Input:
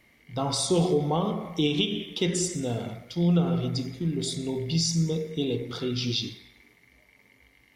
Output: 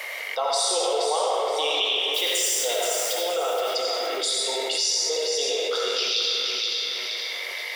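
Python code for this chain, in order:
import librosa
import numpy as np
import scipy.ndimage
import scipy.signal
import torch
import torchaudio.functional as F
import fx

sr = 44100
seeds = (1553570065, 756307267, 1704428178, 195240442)

p1 = fx.crossing_spikes(x, sr, level_db=-31.0, at=(2.14, 3.13))
p2 = scipy.signal.sosfilt(scipy.signal.ellip(4, 1.0, 70, 500.0, 'highpass', fs=sr, output='sos'), p1)
p3 = p2 + fx.echo_feedback(p2, sr, ms=474, feedback_pct=23, wet_db=-8.0, dry=0)
p4 = fx.rev_freeverb(p3, sr, rt60_s=1.1, hf_ratio=0.85, predelay_ms=45, drr_db=-1.0)
p5 = fx.env_flatten(p4, sr, amount_pct=70)
y = p5 * librosa.db_to_amplitude(1.5)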